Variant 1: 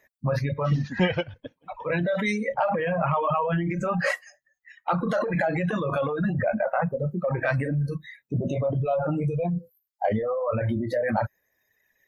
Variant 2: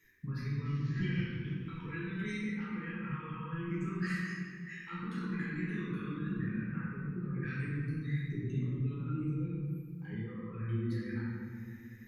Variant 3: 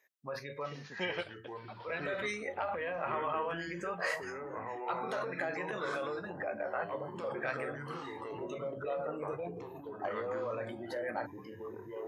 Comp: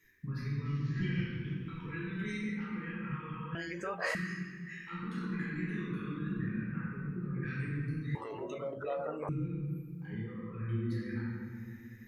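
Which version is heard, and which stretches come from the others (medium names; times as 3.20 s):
2
3.55–4.15 s: from 3
8.15–9.29 s: from 3
not used: 1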